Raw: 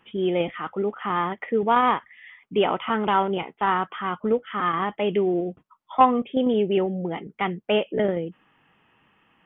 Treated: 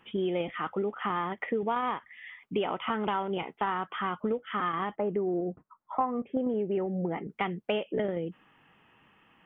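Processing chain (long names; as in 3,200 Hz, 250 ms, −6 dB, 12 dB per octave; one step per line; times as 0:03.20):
0:04.95–0:07.27: low-pass filter 1,500 Hz → 2,300 Hz 24 dB per octave
downward compressor 5 to 1, threshold −27 dBFS, peak gain reduction 14.5 dB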